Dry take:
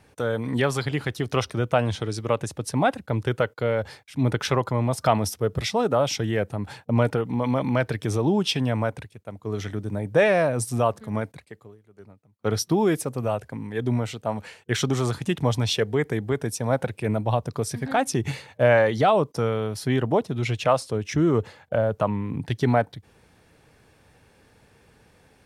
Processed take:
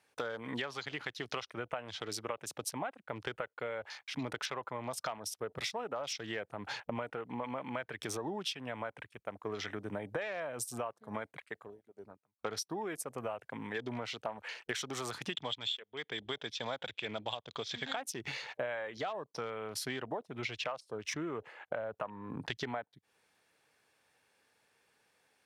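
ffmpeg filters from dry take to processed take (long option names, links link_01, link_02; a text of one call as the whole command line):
ffmpeg -i in.wav -filter_complex "[0:a]asplit=3[link_01][link_02][link_03];[link_01]afade=type=out:start_time=15.32:duration=0.02[link_04];[link_02]lowpass=frequency=3400:width_type=q:width=9,afade=type=in:start_time=15.32:duration=0.02,afade=type=out:start_time=17.94:duration=0.02[link_05];[link_03]afade=type=in:start_time=17.94:duration=0.02[link_06];[link_04][link_05][link_06]amix=inputs=3:normalize=0,highpass=frequency=1100:poles=1,acompressor=threshold=-41dB:ratio=20,afwtdn=0.00141,volume=6.5dB" out.wav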